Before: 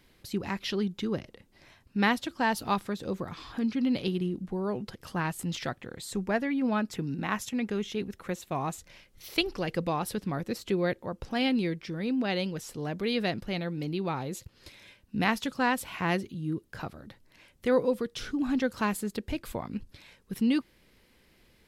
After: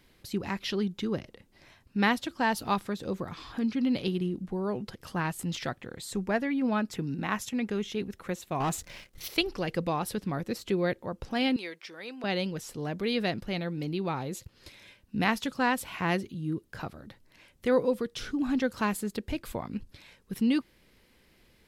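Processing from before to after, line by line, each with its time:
0:08.60–0:09.28: leveller curve on the samples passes 2
0:11.56–0:12.24: high-pass filter 660 Hz

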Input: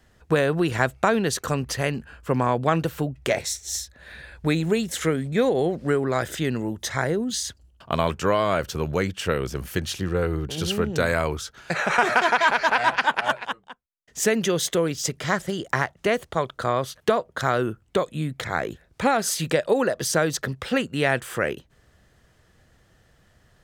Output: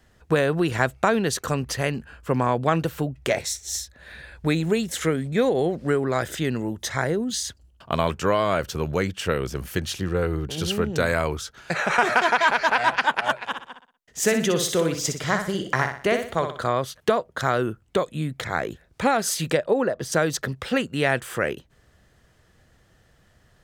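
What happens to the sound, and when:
0:13.38–0:16.67: repeating echo 61 ms, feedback 38%, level −7 dB
0:19.57–0:20.12: high-shelf EQ 2,500 Hz −11.5 dB

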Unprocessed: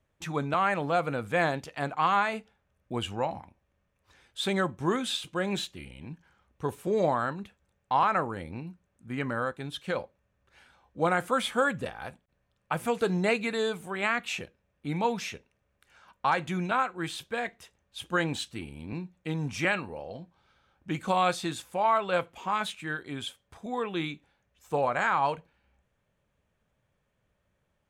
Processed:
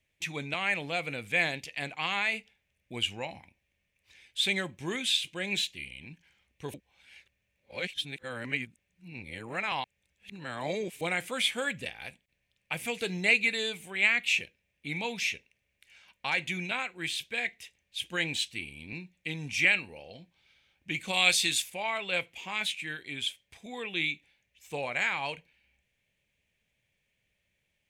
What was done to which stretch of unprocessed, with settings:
0:06.74–0:11.01: reverse
0:21.13–0:21.70: high-shelf EQ 2,700 Hz +10.5 dB
whole clip: high shelf with overshoot 1,700 Hz +9.5 dB, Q 3; level −7 dB

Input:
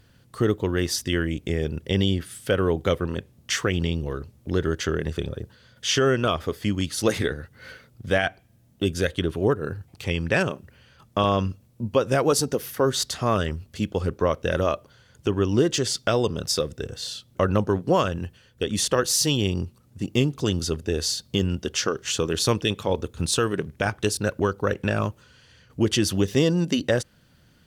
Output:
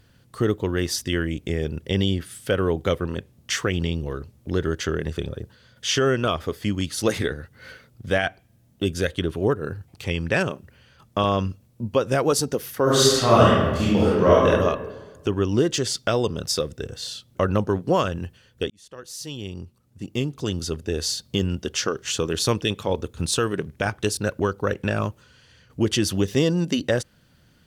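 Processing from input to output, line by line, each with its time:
0:12.83–0:14.46: thrown reverb, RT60 1.3 s, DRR −8 dB
0:18.70–0:21.13: fade in

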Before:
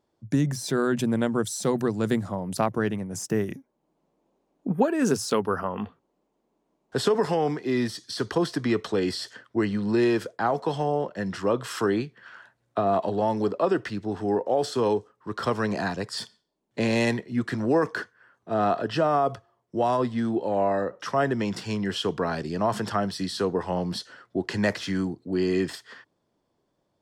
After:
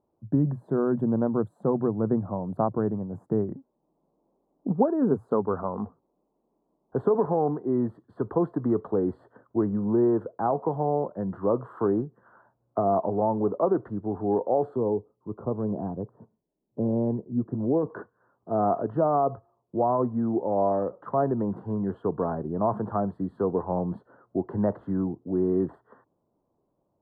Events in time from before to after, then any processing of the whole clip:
0:14.76–0:17.90: Bessel low-pass filter 500 Hz
whole clip: inverse Chebyshev low-pass filter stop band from 2,200 Hz, stop band 40 dB

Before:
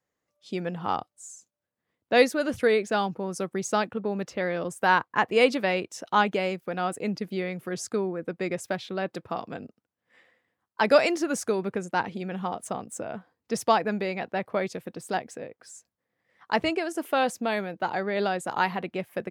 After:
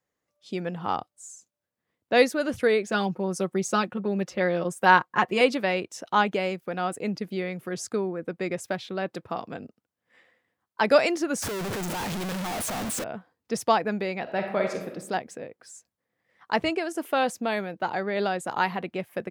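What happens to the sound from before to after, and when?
0:02.87–0:05.41: comb filter 5.5 ms
0:11.42–0:13.04: sign of each sample alone
0:14.22–0:14.88: thrown reverb, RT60 0.8 s, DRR 2.5 dB

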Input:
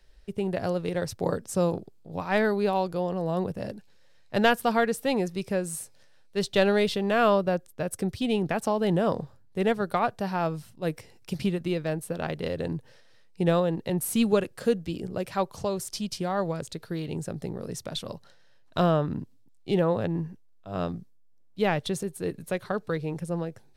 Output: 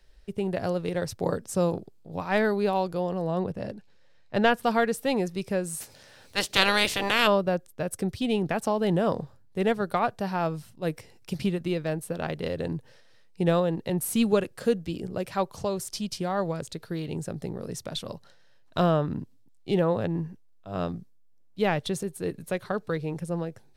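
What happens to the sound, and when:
0:03.26–0:04.62: high-shelf EQ 8,600 Hz → 5,700 Hz −11.5 dB
0:05.80–0:07.26: ceiling on every frequency bin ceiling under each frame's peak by 26 dB

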